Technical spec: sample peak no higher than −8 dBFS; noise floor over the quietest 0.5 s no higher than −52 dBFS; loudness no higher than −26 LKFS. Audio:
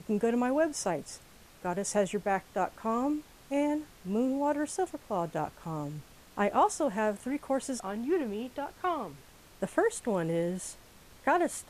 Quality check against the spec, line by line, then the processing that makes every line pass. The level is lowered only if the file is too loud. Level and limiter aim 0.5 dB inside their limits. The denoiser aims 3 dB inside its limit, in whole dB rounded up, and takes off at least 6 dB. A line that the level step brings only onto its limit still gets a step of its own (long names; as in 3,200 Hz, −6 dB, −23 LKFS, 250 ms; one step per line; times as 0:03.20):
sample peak −14.0 dBFS: in spec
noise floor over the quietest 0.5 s −55 dBFS: in spec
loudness −31.5 LKFS: in spec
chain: no processing needed